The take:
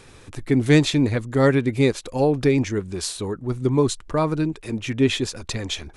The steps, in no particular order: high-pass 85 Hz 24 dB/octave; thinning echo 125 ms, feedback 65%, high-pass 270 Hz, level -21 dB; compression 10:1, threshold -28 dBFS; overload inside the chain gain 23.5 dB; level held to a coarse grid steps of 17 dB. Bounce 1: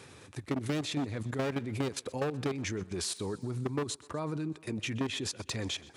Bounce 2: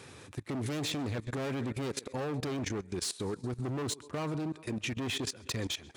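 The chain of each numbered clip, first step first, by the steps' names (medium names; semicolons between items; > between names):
level held to a coarse grid > overload inside the chain > high-pass > compression > thinning echo; thinning echo > overload inside the chain > compression > high-pass > level held to a coarse grid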